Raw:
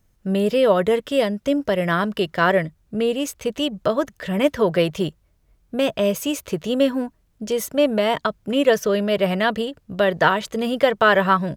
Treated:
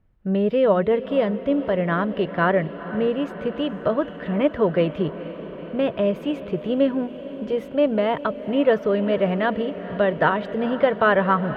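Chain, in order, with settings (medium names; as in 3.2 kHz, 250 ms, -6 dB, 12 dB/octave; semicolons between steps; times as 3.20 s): distance through air 480 m; echo that smears into a reverb 468 ms, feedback 74%, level -14.5 dB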